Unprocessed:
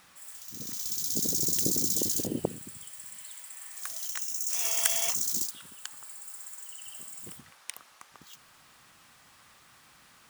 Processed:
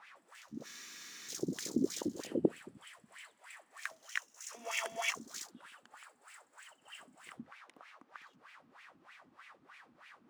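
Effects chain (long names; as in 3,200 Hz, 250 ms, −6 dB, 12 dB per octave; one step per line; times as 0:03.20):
LFO wah 3.2 Hz 230–2,400 Hz, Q 3.8
frozen spectrum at 0:00.68, 0.61 s
level +10 dB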